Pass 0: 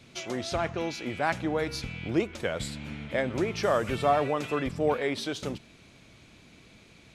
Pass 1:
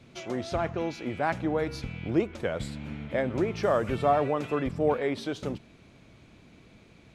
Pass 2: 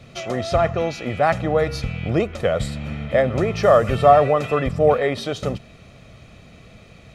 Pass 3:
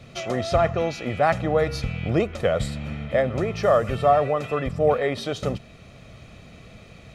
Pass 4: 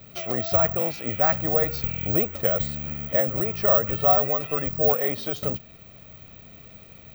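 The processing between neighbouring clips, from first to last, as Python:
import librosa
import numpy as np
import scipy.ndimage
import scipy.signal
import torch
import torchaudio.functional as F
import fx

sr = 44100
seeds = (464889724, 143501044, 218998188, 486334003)

y1 = fx.high_shelf(x, sr, hz=2000.0, db=-9.5)
y1 = y1 * 10.0 ** (1.5 / 20.0)
y2 = y1 + 0.55 * np.pad(y1, (int(1.6 * sr / 1000.0), 0))[:len(y1)]
y2 = y2 * 10.0 ** (8.5 / 20.0)
y3 = fx.rider(y2, sr, range_db=4, speed_s=2.0)
y3 = y3 * 10.0 ** (-4.0 / 20.0)
y4 = (np.kron(scipy.signal.resample_poly(y3, 1, 2), np.eye(2)[0]) * 2)[:len(y3)]
y4 = y4 * 10.0 ** (-4.0 / 20.0)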